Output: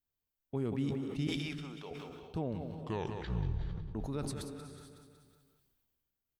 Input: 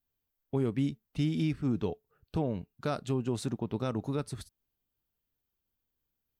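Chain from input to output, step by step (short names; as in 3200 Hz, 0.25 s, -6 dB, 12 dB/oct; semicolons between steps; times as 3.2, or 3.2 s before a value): 1.27–1.91 HPF 690 Hz 12 dB/oct; 2.55 tape stop 1.40 s; feedback echo 0.185 s, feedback 50%, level -11.5 dB; non-linear reverb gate 0.48 s rising, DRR 10.5 dB; sustainer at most 27 dB/s; gain -6 dB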